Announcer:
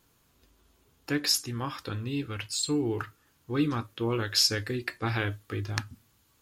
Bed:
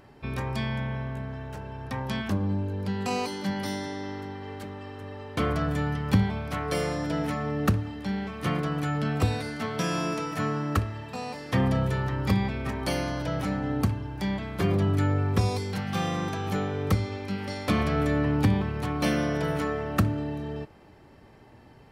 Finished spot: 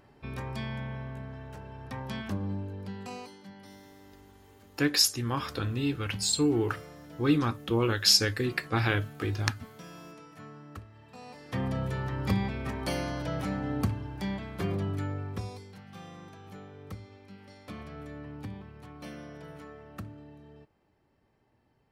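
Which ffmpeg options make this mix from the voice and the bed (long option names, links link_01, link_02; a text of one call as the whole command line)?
ffmpeg -i stem1.wav -i stem2.wav -filter_complex "[0:a]adelay=3700,volume=2.5dB[link_01];[1:a]volume=9.5dB,afade=type=out:start_time=2.5:duration=0.94:silence=0.223872,afade=type=in:start_time=10.89:duration=1.39:silence=0.16788,afade=type=out:start_time=14.07:duration=1.67:silence=0.188365[link_02];[link_01][link_02]amix=inputs=2:normalize=0" out.wav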